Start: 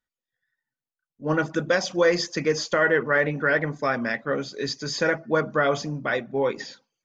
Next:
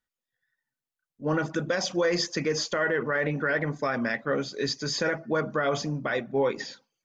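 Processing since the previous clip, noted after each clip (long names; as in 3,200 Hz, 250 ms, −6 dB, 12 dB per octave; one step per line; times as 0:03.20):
brickwall limiter −16.5 dBFS, peak gain reduction 8 dB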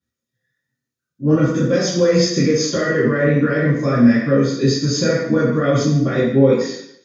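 convolution reverb RT60 0.70 s, pre-delay 3 ms, DRR −10.5 dB
level −11 dB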